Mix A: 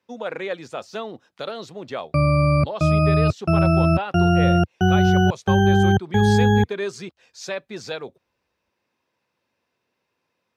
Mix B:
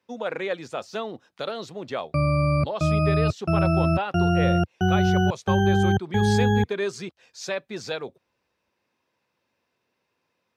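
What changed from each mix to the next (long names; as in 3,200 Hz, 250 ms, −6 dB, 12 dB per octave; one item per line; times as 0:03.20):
background −4.0 dB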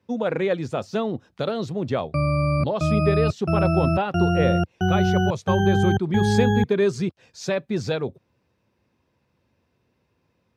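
speech: remove high-pass filter 810 Hz 6 dB per octave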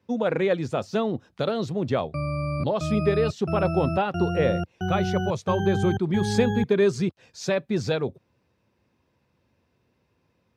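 background −6.5 dB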